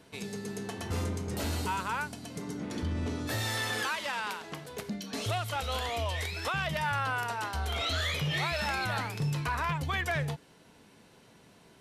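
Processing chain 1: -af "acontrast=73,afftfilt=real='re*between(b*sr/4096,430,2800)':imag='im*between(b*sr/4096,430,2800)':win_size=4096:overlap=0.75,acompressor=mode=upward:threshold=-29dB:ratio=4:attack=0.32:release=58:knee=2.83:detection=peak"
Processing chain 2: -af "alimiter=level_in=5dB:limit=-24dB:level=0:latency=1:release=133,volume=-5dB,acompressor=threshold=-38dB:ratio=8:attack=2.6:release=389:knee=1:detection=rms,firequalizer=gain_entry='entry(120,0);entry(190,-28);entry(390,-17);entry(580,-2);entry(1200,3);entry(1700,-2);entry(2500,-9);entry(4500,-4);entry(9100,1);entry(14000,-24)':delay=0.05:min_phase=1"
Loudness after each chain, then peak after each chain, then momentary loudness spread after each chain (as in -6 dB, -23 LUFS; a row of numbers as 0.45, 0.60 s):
-28.5, -46.0 LUFS; -14.5, -33.0 dBFS; 13, 12 LU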